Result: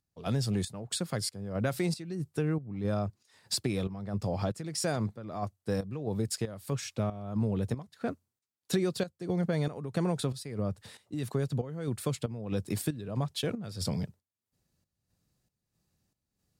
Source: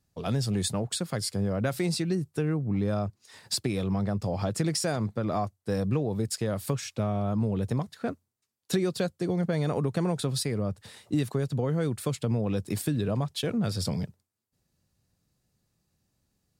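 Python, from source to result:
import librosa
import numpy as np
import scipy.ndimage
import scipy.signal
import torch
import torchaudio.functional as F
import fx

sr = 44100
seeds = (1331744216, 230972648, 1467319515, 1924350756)

y = fx.volume_shaper(x, sr, bpm=93, per_beat=1, depth_db=-12, release_ms=261.0, shape='slow start')
y = y * librosa.db_to_amplitude(-2.0)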